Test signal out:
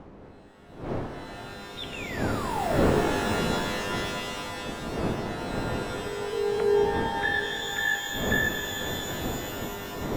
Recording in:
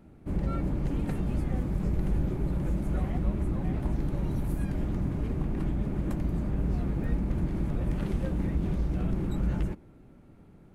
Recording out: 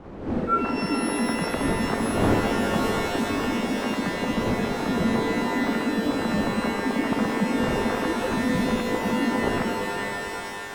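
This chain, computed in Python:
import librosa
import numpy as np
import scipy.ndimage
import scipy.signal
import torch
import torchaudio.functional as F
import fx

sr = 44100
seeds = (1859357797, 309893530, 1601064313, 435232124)

y = fx.sine_speech(x, sr)
y = fx.dmg_wind(y, sr, seeds[0], corner_hz=460.0, level_db=-34.0)
y = fx.rev_shimmer(y, sr, seeds[1], rt60_s=3.1, semitones=12, shimmer_db=-2, drr_db=5.0)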